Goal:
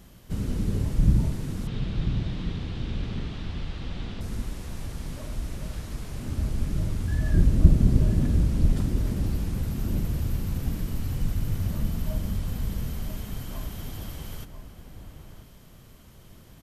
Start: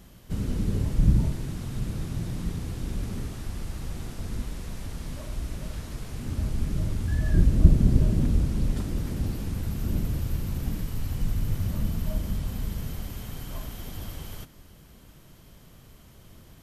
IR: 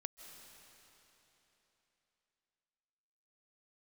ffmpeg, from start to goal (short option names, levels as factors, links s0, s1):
-filter_complex "[0:a]asettb=1/sr,asplit=3[s0][s1][s2];[s0]atrim=end=1.674[s3];[s1]atrim=start=1.67:end=4.21,asetpts=PTS-STARTPTS,afade=t=in:d=0.004:c=qsin,afade=t=out:st=2.536:d=0.004:c=qsin,lowpass=f=3500:t=q:w=2.2[s4];[s2]atrim=start=4.206[s5];[s3][s4]acrossfade=d=0.004:c1=hsin:c2=qsin[s6];[s6][s5]acrossfade=d=0.004:c1=qsin:c2=hsin,asplit=2[s7][s8];[s8]adelay=991.3,volume=0.398,highshelf=f=4000:g=-22.3[s9];[s7][s9]amix=inputs=2:normalize=0"